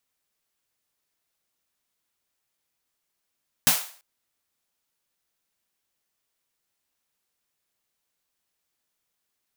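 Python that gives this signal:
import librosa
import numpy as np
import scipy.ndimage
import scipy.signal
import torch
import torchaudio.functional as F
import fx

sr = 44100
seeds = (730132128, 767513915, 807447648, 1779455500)

y = fx.drum_snare(sr, seeds[0], length_s=0.34, hz=160.0, second_hz=240.0, noise_db=11, noise_from_hz=590.0, decay_s=0.16, noise_decay_s=0.44)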